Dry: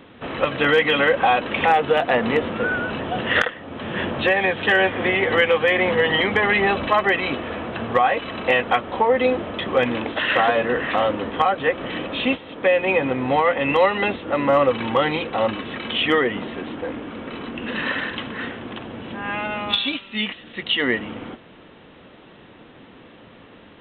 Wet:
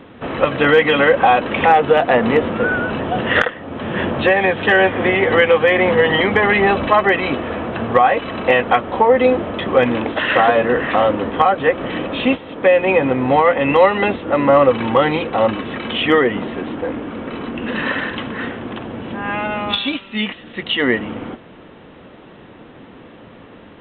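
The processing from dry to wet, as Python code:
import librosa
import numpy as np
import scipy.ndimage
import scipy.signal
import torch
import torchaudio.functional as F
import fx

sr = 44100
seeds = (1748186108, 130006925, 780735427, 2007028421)

y = fx.high_shelf(x, sr, hz=2700.0, db=-9.0)
y = y * librosa.db_to_amplitude(6.0)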